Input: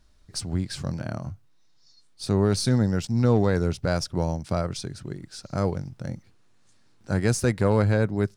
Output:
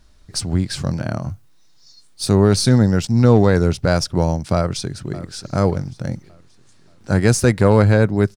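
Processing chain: 1.29–2.36 high shelf 7900 Hz +9.5 dB; 4.55–5.32 echo throw 0.58 s, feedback 40%, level -16 dB; gain +8 dB

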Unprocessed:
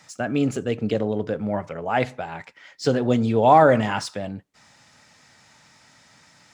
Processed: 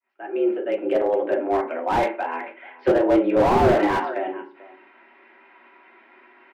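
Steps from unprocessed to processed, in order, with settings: opening faded in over 1.14 s; echo 0.437 s -20 dB; FDN reverb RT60 0.36 s, low-frequency decay 1.4×, high-frequency decay 0.75×, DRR 0.5 dB; mistuned SSB +85 Hz 210–2600 Hz; slew limiter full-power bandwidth 86 Hz; gain +2 dB

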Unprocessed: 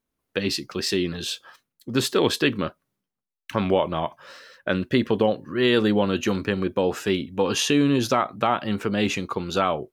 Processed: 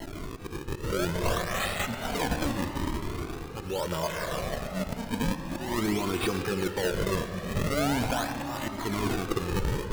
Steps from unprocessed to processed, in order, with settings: switching spikes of -23.5 dBFS; 4.03–5.12 comb 4.7 ms, depth 94%; AGC gain up to 11.5 dB; limiter -9.5 dBFS, peak gain reduction 8.5 dB; auto swell 0.209 s; decimation with a swept rate 36×, swing 160% 0.44 Hz; multi-head echo 0.125 s, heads all three, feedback 67%, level -22 dB; reverb RT60 4.2 s, pre-delay 0.111 s, DRR 8 dB; cascading flanger rising 0.34 Hz; gain -4 dB

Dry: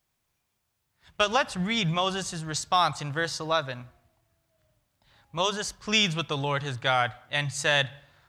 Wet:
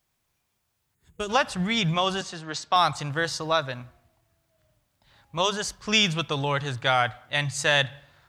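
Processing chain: 0.95–1.29 spectral gain 480–6400 Hz -13 dB; 2.21–2.76 three-band isolator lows -15 dB, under 210 Hz, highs -16 dB, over 5600 Hz; gain +2 dB

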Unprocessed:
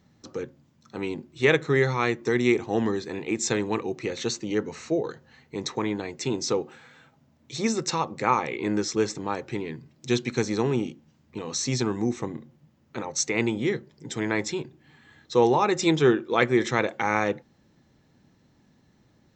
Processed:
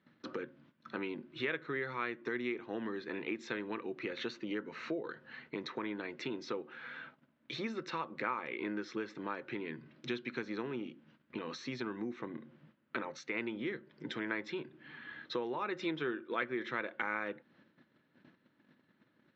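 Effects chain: gate -59 dBFS, range -12 dB; compressor 4:1, threshold -40 dBFS, peak gain reduction 20.5 dB; speaker cabinet 250–3500 Hz, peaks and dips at 440 Hz -5 dB, 780 Hz -9 dB, 1500 Hz +6 dB; gain +5 dB

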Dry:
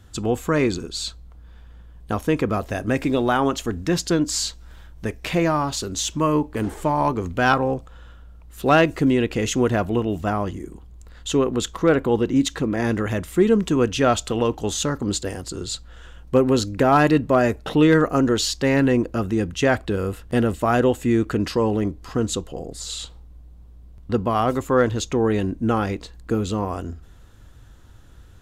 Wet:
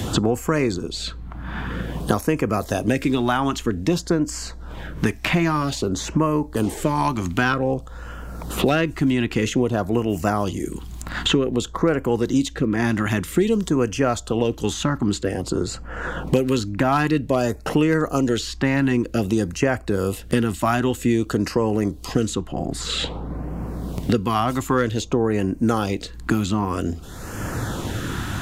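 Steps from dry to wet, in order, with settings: LFO notch sine 0.52 Hz 450–3800 Hz; three-band squash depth 100%

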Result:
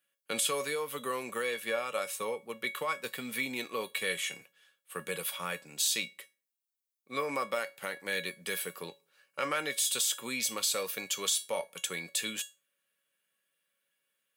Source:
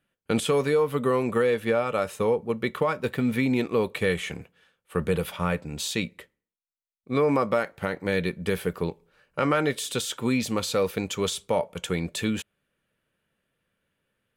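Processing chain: HPF 120 Hz 24 dB/oct; tilt +4 dB/oct; resonator 560 Hz, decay 0.25 s, harmonics all, mix 80%; gain +4 dB

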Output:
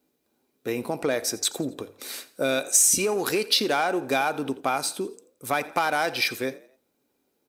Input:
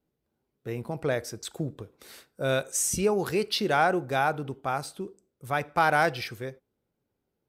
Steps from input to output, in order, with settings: in parallel at -5 dB: hard clip -23 dBFS, distortion -9 dB; on the sum: compressor 10:1, threshold -25 dBFS, peak gain reduction 10 dB; tone controls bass -14 dB, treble +6 dB; notches 50/100 Hz; small resonant body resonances 260/2400/3900 Hz, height 10 dB; on a send: frequency-shifting echo 86 ms, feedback 41%, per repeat +42 Hz, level -19.5 dB; on the sum: gain +4.5 dB

